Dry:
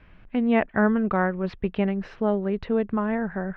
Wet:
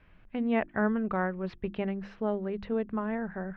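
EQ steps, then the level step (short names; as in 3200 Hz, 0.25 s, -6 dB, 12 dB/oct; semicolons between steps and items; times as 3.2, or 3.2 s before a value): notches 50/100/150/200/250/300/350 Hz; -6.5 dB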